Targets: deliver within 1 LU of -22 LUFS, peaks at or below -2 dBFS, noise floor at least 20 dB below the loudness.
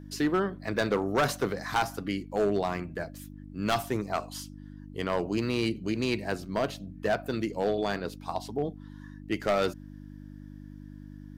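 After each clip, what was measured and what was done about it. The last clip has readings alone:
clipped 1.0%; flat tops at -19.5 dBFS; hum 50 Hz; harmonics up to 300 Hz; hum level -42 dBFS; loudness -30.5 LUFS; peak -19.5 dBFS; loudness target -22.0 LUFS
-> clip repair -19.5 dBFS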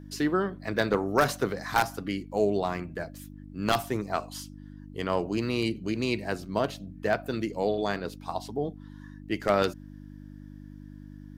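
clipped 0.0%; hum 50 Hz; harmonics up to 300 Hz; hum level -42 dBFS
-> de-hum 50 Hz, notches 6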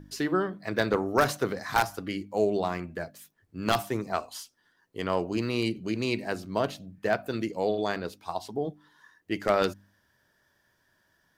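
hum none; loudness -29.5 LUFS; peak -10.0 dBFS; loudness target -22.0 LUFS
-> gain +7.5 dB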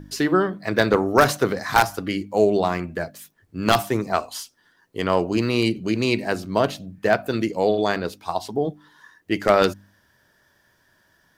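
loudness -22.0 LUFS; peak -2.5 dBFS; noise floor -63 dBFS

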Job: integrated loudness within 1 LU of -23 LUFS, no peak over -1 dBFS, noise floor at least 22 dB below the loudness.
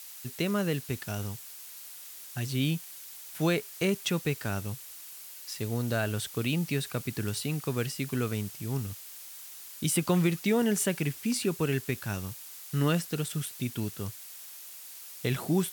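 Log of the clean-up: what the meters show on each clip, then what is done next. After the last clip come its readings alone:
noise floor -46 dBFS; noise floor target -53 dBFS; loudness -31.0 LUFS; peak -13.5 dBFS; loudness target -23.0 LUFS
-> denoiser 7 dB, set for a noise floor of -46 dBFS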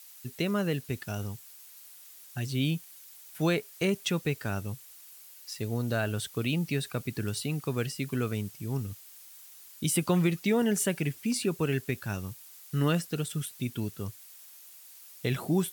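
noise floor -51 dBFS; noise floor target -53 dBFS
-> denoiser 6 dB, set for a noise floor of -51 dBFS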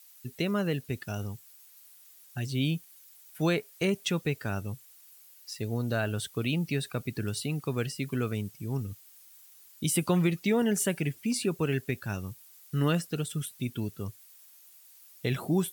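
noise floor -56 dBFS; loudness -31.0 LUFS; peak -14.0 dBFS; loudness target -23.0 LUFS
-> gain +8 dB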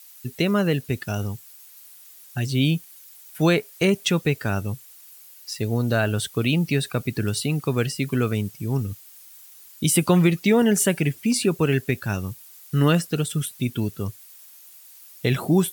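loudness -23.0 LUFS; peak -6.0 dBFS; noise floor -48 dBFS

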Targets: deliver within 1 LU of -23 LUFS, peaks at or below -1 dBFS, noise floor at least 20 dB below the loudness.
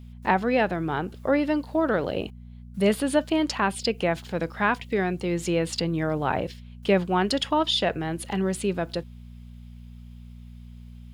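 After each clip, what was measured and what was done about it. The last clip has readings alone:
hum 60 Hz; harmonics up to 240 Hz; hum level -40 dBFS; loudness -25.5 LUFS; peak -7.0 dBFS; loudness target -23.0 LUFS
-> de-hum 60 Hz, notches 4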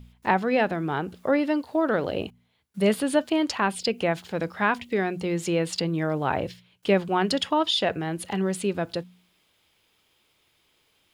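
hum none; loudness -26.0 LUFS; peak -7.0 dBFS; loudness target -23.0 LUFS
-> gain +3 dB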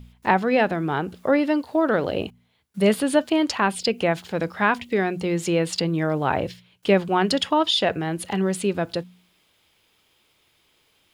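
loudness -23.0 LUFS; peak -4.0 dBFS; noise floor -65 dBFS

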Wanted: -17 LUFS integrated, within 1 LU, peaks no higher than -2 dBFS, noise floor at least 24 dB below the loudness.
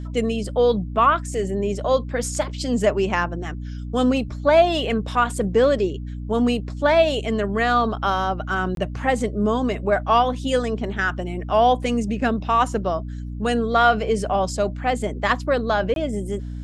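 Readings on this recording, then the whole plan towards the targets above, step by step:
dropouts 2; longest dropout 22 ms; hum 60 Hz; harmonics up to 300 Hz; hum level -28 dBFS; loudness -21.5 LUFS; peak -5.0 dBFS; loudness target -17.0 LUFS
-> interpolate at 8.75/15.94, 22 ms; de-hum 60 Hz, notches 5; gain +4.5 dB; limiter -2 dBFS

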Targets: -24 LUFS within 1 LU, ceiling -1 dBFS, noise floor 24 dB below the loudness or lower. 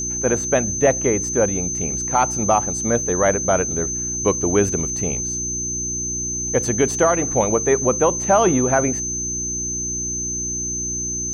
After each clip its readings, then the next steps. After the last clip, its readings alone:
hum 60 Hz; harmonics up to 360 Hz; hum level -30 dBFS; steady tone 6200 Hz; tone level -23 dBFS; loudness -19.5 LUFS; peak -5.0 dBFS; loudness target -24.0 LUFS
-> de-hum 60 Hz, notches 6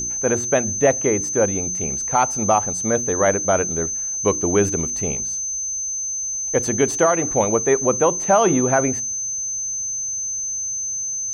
hum none; steady tone 6200 Hz; tone level -23 dBFS
-> notch 6200 Hz, Q 30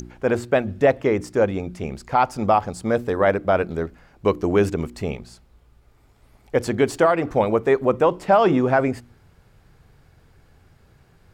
steady tone none; loudness -21.0 LUFS; peak -6.5 dBFS; loudness target -24.0 LUFS
-> gain -3 dB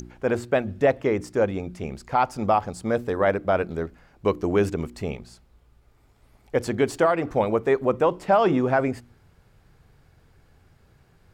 loudness -24.0 LUFS; peak -9.5 dBFS; noise floor -60 dBFS

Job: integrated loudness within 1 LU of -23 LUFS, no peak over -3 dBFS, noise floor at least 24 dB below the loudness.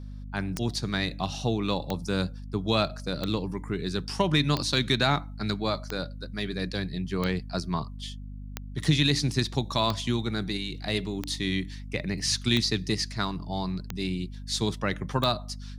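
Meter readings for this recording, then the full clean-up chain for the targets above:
clicks 12; hum 50 Hz; harmonics up to 250 Hz; hum level -37 dBFS; loudness -28.5 LUFS; peak -10.5 dBFS; loudness target -23.0 LUFS
-> de-click; de-hum 50 Hz, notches 5; gain +5.5 dB

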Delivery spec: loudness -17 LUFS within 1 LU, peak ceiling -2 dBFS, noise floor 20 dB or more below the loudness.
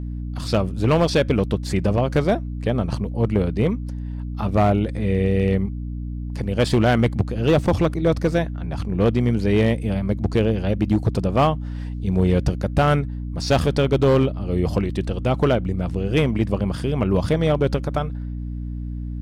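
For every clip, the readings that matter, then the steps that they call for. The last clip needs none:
clipped 1.4%; flat tops at -11.0 dBFS; hum 60 Hz; harmonics up to 300 Hz; hum level -26 dBFS; loudness -21.5 LUFS; peak -11.0 dBFS; loudness target -17.0 LUFS
-> clip repair -11 dBFS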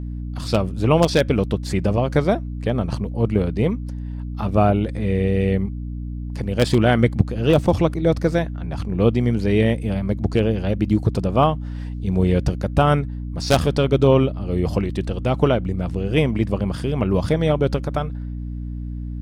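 clipped 0.0%; hum 60 Hz; harmonics up to 300 Hz; hum level -26 dBFS
-> notches 60/120/180/240/300 Hz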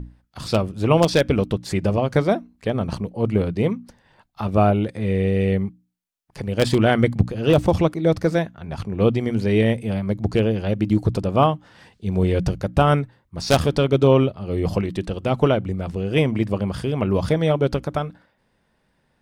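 hum none; loudness -21.0 LUFS; peak -1.0 dBFS; loudness target -17.0 LUFS
-> gain +4 dB; limiter -2 dBFS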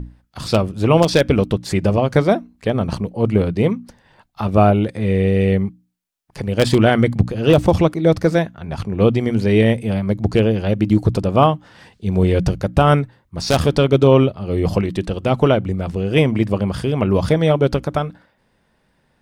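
loudness -17.5 LUFS; peak -2.0 dBFS; noise floor -63 dBFS

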